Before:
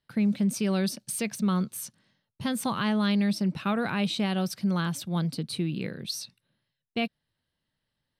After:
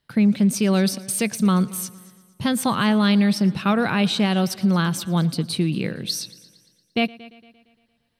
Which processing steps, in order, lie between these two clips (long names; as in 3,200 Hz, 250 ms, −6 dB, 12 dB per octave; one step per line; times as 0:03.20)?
echo machine with several playback heads 115 ms, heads first and second, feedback 45%, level −23 dB
level +7.5 dB